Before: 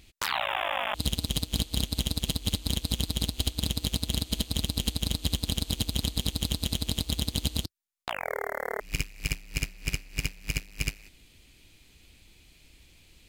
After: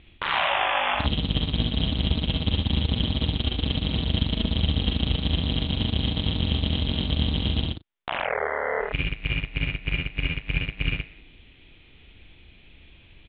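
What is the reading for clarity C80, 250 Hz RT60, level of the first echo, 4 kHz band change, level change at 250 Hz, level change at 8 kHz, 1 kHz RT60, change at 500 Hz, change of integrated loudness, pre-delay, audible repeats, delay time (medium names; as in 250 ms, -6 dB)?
no reverb, no reverb, -4.0 dB, +3.5 dB, +6.5 dB, under -40 dB, no reverb, +6.0 dB, +4.5 dB, no reverb, 4, 43 ms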